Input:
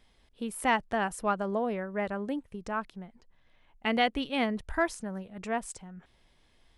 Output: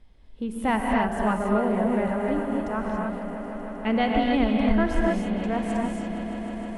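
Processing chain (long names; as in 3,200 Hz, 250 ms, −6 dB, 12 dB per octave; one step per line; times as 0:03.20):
spectral tilt −2.5 dB per octave
echo that builds up and dies away 155 ms, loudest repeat 5, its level −17 dB
reverb whose tail is shaped and stops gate 310 ms rising, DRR −1 dB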